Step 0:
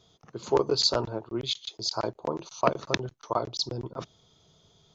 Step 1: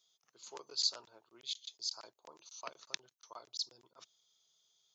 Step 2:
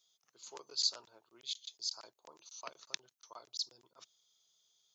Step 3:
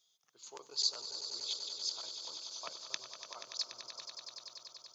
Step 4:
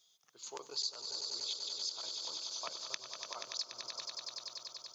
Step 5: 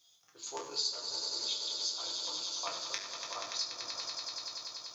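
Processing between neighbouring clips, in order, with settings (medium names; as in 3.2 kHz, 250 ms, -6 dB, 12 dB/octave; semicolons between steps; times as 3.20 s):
differentiator; trim -4.5 dB
treble shelf 5.1 kHz +4 dB; trim -1.5 dB
echo with a slow build-up 96 ms, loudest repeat 5, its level -12 dB
compression 3:1, threshold -42 dBFS, peak gain reduction 11.5 dB; trim +4.5 dB
reverberation RT60 0.70 s, pre-delay 5 ms, DRR -2 dB; trim +1 dB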